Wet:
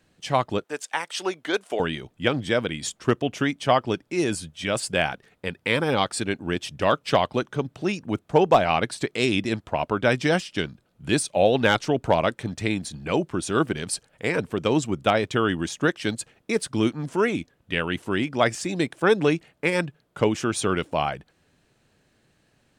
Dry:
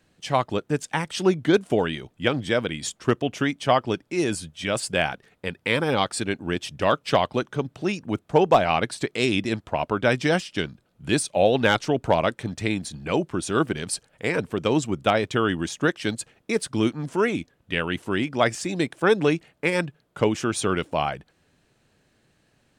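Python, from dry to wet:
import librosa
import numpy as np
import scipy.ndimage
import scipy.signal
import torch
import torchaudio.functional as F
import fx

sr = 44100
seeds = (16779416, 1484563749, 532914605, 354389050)

y = fx.highpass(x, sr, hz=560.0, slope=12, at=(0.64, 1.8))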